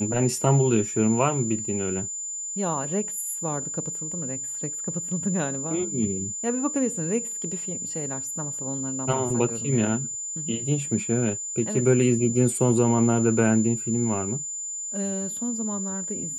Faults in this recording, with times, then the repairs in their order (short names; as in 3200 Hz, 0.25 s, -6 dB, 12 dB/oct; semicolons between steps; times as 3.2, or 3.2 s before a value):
tone 7100 Hz -30 dBFS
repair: notch 7100 Hz, Q 30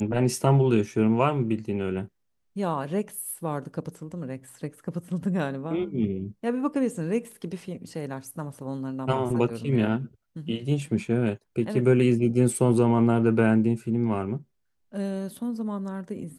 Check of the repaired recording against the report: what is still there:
none